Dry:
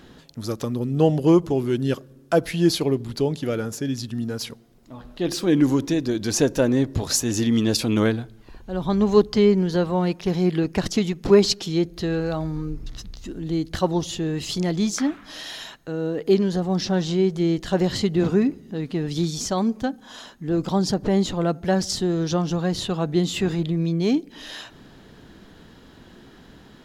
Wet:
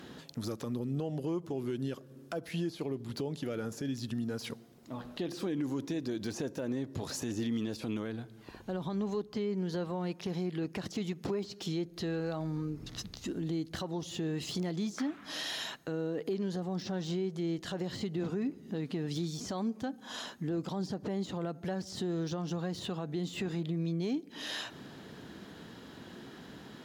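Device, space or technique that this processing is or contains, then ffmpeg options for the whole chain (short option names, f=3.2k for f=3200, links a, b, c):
podcast mastering chain: -af "highpass=110,deesser=0.8,acompressor=threshold=-33dB:ratio=3,alimiter=level_in=1.5dB:limit=-24dB:level=0:latency=1,volume=-1.5dB" -ar 48000 -c:a libmp3lame -b:a 128k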